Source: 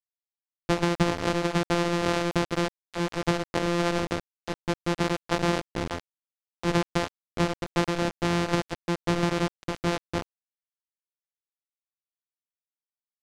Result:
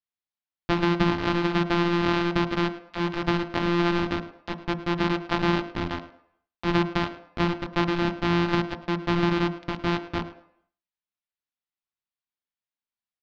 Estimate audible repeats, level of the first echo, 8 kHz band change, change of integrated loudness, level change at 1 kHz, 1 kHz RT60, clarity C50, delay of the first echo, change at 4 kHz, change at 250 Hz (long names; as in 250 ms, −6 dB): 1, −17.0 dB, below −10 dB, +2.0 dB, +2.0 dB, 0.70 s, 12.5 dB, 107 ms, +1.0 dB, +3.0 dB